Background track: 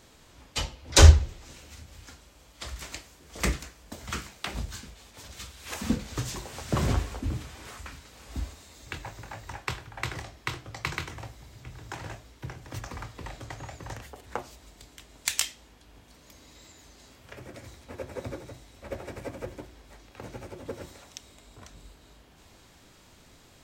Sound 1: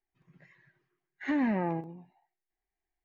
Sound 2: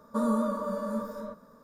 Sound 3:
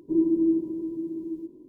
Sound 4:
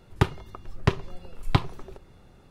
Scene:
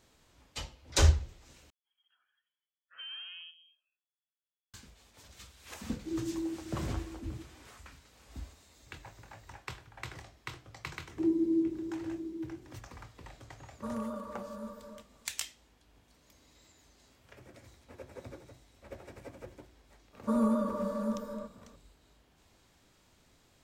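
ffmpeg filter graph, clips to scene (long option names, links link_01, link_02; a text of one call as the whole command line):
ffmpeg -i bed.wav -i cue0.wav -i cue1.wav -i cue2.wav -filter_complex "[3:a]asplit=2[link_01][link_02];[2:a]asplit=2[link_03][link_04];[0:a]volume=-10dB[link_05];[1:a]lowpass=frequency=2900:width_type=q:width=0.5098,lowpass=frequency=2900:width_type=q:width=0.6013,lowpass=frequency=2900:width_type=q:width=0.9,lowpass=frequency=2900:width_type=q:width=2.563,afreqshift=-3400[link_06];[link_02]highpass=160[link_07];[link_04]lowshelf=frequency=480:gain=6[link_08];[link_05]asplit=2[link_09][link_10];[link_09]atrim=end=1.704[link_11];[link_06]atrim=end=3.04,asetpts=PTS-STARTPTS,volume=-16.5dB[link_12];[link_10]atrim=start=4.736[link_13];[link_01]atrim=end=1.68,asetpts=PTS-STARTPTS,volume=-13.5dB,afade=type=in:duration=0.004:curve=hsin,afade=type=out:start_time=1.676:duration=0.004:curve=hsin,adelay=5960[link_14];[link_07]atrim=end=1.68,asetpts=PTS-STARTPTS,volume=-6dB,afade=type=in:duration=0.004:curve=hsin,afade=type=out:start_time=1.676:duration=0.004:curve=hsin,adelay=11090[link_15];[link_03]atrim=end=1.63,asetpts=PTS-STARTPTS,volume=-10.5dB,afade=type=in:duration=0.004:curve=hsin,afade=type=out:start_time=1.626:duration=0.004:curve=hsin,adelay=13680[link_16];[link_08]atrim=end=1.63,asetpts=PTS-STARTPTS,volume=-5dB,afade=type=in:duration=0.004:curve=hsin,afade=type=out:start_time=1.626:duration=0.004:curve=hsin,adelay=20130[link_17];[link_11][link_12]acrossfade=duration=0.004:curve1=hsin:curve2=hsin[link_18];[link_18][link_13]acrossfade=duration=0.004:curve1=hsin:curve2=hsin[link_19];[link_19][link_14][link_15][link_16][link_17]amix=inputs=5:normalize=0" out.wav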